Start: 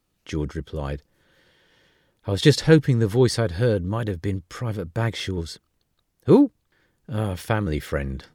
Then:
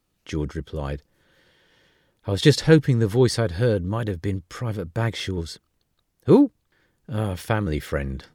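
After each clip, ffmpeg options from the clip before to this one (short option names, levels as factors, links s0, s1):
-af anull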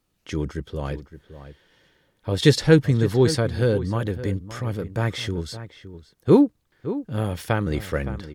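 -filter_complex "[0:a]asplit=2[s0][s1];[s1]adelay=565.6,volume=0.224,highshelf=f=4000:g=-12.7[s2];[s0][s2]amix=inputs=2:normalize=0"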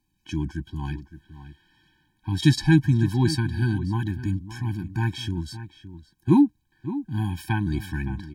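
-af "afftfilt=real='re*eq(mod(floor(b*sr/1024/370),2),0)':imag='im*eq(mod(floor(b*sr/1024/370),2),0)':win_size=1024:overlap=0.75"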